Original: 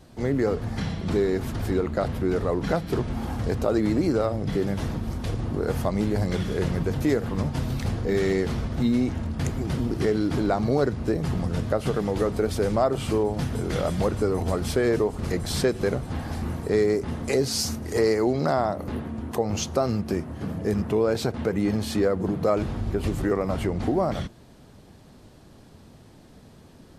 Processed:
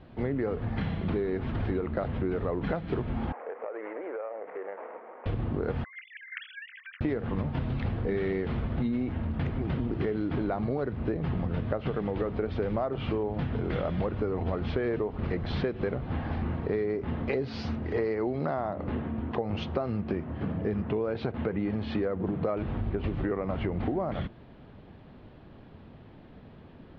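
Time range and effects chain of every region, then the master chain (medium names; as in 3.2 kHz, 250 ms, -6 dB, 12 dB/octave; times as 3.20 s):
3.32–5.26 s: median filter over 25 samples + elliptic band-pass 470–2100 Hz, stop band 60 dB + compression 12:1, threshold -32 dBFS
5.84–7.01 s: formants replaced by sine waves + steep high-pass 1.6 kHz 48 dB/octave
whole clip: inverse Chebyshev low-pass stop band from 7.6 kHz, stop band 50 dB; compression, threshold -26 dBFS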